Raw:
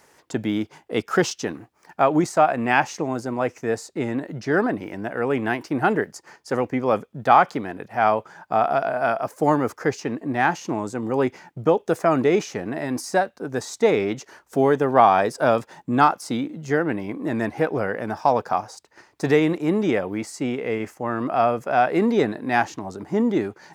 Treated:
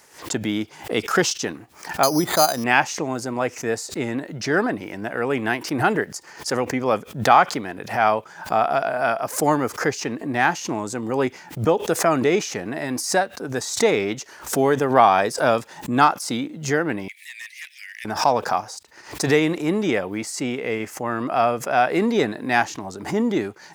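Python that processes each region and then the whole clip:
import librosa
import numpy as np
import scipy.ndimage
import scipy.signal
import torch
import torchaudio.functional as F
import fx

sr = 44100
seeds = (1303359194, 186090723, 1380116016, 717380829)

y = fx.chain(x, sr, fx.air_absorb(metres=360.0),
    fx.resample_bad(factor=8, down='filtered', up='hold'), at=(2.03, 2.64))
y = fx.chain(y, sr, fx.steep_highpass(hz=1900.0, slope=72),
    fx.overload_stage(gain_db=34.0),
    fx.band_squash(depth_pct=40), at=(17.08, 18.05))
y = fx.high_shelf(y, sr, hz=2000.0, db=8.0)
y = fx.pre_swell(y, sr, db_per_s=130.0)
y = y * librosa.db_to_amplitude(-1.0)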